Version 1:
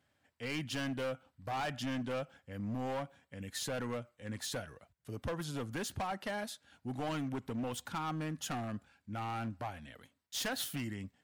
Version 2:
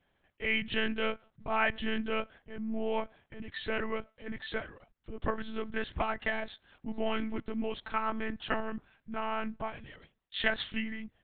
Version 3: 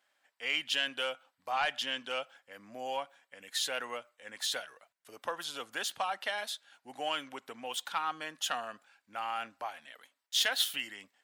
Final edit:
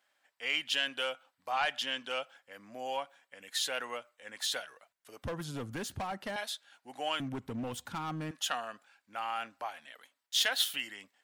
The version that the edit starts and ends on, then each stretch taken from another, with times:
3
5.23–6.36 s: from 1
7.20–8.31 s: from 1
not used: 2

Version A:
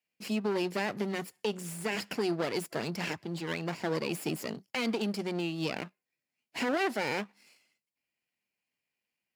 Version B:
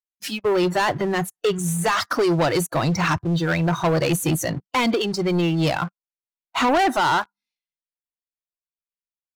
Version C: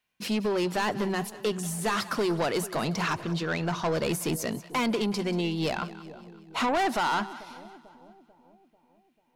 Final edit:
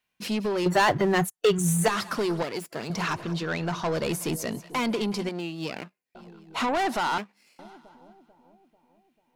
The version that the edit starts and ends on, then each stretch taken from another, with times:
C
0.66–1.88 s: from B
2.43–2.90 s: from A
5.29–6.15 s: from A
7.18–7.59 s: from A

